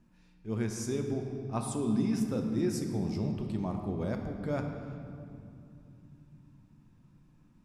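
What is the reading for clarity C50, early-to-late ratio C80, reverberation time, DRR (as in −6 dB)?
5.0 dB, 6.0 dB, 2.7 s, 3.5 dB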